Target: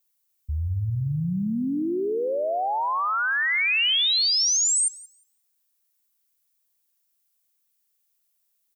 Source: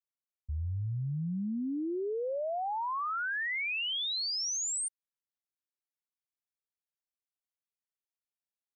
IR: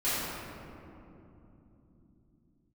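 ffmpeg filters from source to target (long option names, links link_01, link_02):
-filter_complex "[0:a]aemphasis=mode=production:type=75kf,alimiter=level_in=2dB:limit=-24dB:level=0:latency=1:release=65,volume=-2dB,asplit=2[link_01][link_02];[link_02]adelay=177,lowpass=frequency=2600:poles=1,volume=-11.5dB,asplit=2[link_03][link_04];[link_04]adelay=177,lowpass=frequency=2600:poles=1,volume=0.47,asplit=2[link_05][link_06];[link_06]adelay=177,lowpass=frequency=2600:poles=1,volume=0.47,asplit=2[link_07][link_08];[link_08]adelay=177,lowpass=frequency=2600:poles=1,volume=0.47,asplit=2[link_09][link_10];[link_10]adelay=177,lowpass=frequency=2600:poles=1,volume=0.47[link_11];[link_01][link_03][link_05][link_07][link_09][link_11]amix=inputs=6:normalize=0,volume=7.5dB"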